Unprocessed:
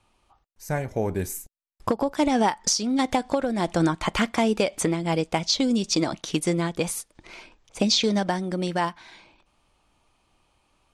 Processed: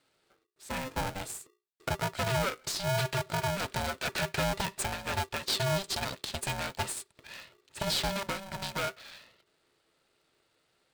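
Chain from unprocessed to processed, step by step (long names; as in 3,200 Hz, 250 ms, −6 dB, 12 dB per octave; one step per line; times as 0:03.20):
parametric band 3,200 Hz +8 dB 1.6 octaves
brickwall limiter −12 dBFS, peak gain reduction 9.5 dB
EQ curve with evenly spaced ripples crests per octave 0.99, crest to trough 14 dB
tube saturation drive 19 dB, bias 0.75
ring modulator with a square carrier 390 Hz
level −6 dB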